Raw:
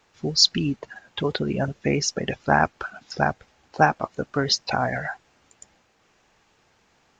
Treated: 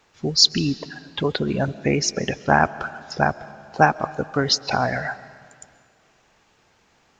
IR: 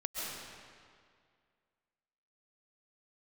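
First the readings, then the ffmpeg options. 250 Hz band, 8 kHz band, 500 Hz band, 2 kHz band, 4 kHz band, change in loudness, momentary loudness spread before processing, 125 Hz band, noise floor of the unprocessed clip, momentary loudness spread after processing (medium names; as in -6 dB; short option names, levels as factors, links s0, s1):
+2.5 dB, +2.0 dB, +2.5 dB, +2.5 dB, +2.5 dB, +2.0 dB, 16 LU, +2.0 dB, -64 dBFS, 15 LU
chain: -filter_complex "[0:a]asplit=2[s0][s1];[1:a]atrim=start_sample=2205[s2];[s1][s2]afir=irnorm=-1:irlink=0,volume=0.112[s3];[s0][s3]amix=inputs=2:normalize=0,volume=1.19"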